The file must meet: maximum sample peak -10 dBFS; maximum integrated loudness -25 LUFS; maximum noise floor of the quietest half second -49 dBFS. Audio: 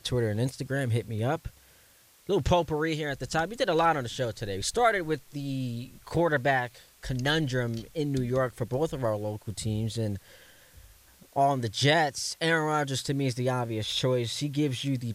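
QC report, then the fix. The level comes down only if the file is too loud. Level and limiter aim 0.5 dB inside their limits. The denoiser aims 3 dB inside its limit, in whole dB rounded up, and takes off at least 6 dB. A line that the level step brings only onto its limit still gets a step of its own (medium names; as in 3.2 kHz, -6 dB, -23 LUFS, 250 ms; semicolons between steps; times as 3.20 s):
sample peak -11.0 dBFS: pass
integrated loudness -28.5 LUFS: pass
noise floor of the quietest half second -59 dBFS: pass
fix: none needed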